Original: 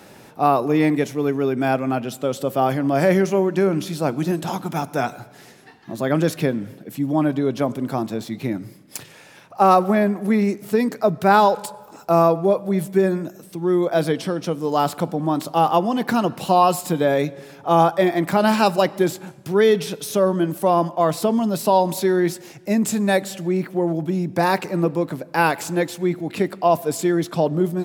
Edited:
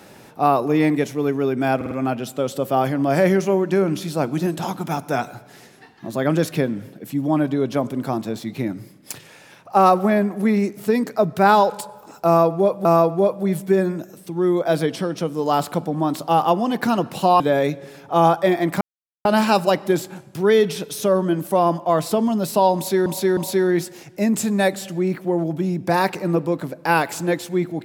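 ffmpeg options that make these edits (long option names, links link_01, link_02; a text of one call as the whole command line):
ffmpeg -i in.wav -filter_complex "[0:a]asplit=9[link_01][link_02][link_03][link_04][link_05][link_06][link_07][link_08][link_09];[link_01]atrim=end=1.812[link_10];[link_02]atrim=start=1.758:end=1.812[link_11];[link_03]atrim=start=1.758:end=1.812[link_12];[link_04]atrim=start=1.758:end=12.702[link_13];[link_05]atrim=start=12.108:end=16.662[link_14];[link_06]atrim=start=16.948:end=18.36,asetpts=PTS-STARTPTS,afade=type=out:start_time=1.408:duration=0.004:curve=hsin,apad=pad_dur=0.44[link_15];[link_07]atrim=start=18.36:end=22.172,asetpts=PTS-STARTPTS,afade=type=in:duration=0.004:curve=hsin[link_16];[link_08]atrim=start=21.858:end=22.172[link_17];[link_09]atrim=start=21.858[link_18];[link_10][link_11]acrossfade=duration=0.004:curve1=hsin:curve2=hsin[link_19];[link_19][link_12]acrossfade=duration=0.004:curve1=hsin:curve2=hsin[link_20];[link_20][link_13]acrossfade=duration=0.004:curve1=hsin:curve2=hsin[link_21];[link_21][link_14]acrossfade=duration=0.004:curve1=hsin:curve2=hsin[link_22];[link_15][link_16]concat=n=2:v=0:a=1[link_23];[link_22][link_23]acrossfade=duration=0.004:curve1=hsin:curve2=hsin[link_24];[link_24][link_17]acrossfade=duration=0.004:curve1=hsin:curve2=hsin[link_25];[link_25][link_18]acrossfade=duration=0.004:curve1=hsin:curve2=hsin" out.wav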